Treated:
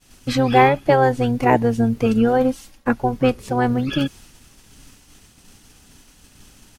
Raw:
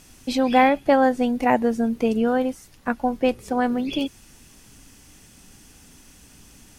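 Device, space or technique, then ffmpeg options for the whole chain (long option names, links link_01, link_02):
octave pedal: -filter_complex "[0:a]asplit=2[link_01][link_02];[link_02]asetrate=22050,aresample=44100,atempo=2,volume=-5dB[link_03];[link_01][link_03]amix=inputs=2:normalize=0,agate=range=-33dB:threshold=-43dB:ratio=3:detection=peak,asettb=1/sr,asplit=3[link_04][link_05][link_06];[link_04]atrim=end=2.064[link_07];[link_05]atrim=start=2.06:end=2.93,asetpts=PTS-STARTPTS,afade=type=in:duration=0.004:curve=qsin,afade=type=out:start_time=0.866:duration=0.004:curve=qsin,aecho=1:1:3.7:0.59,atrim=end_sample=38367[link_08];[link_06]atrim=start=2.926[link_09];[link_07][link_08]acrossfade=duration=0.004:curve1=hsin:curve2=qsin[link_10];[link_10][link_09]acrossfade=duration=0.004:curve1=qsin:curve2=hsin,volume=2.5dB"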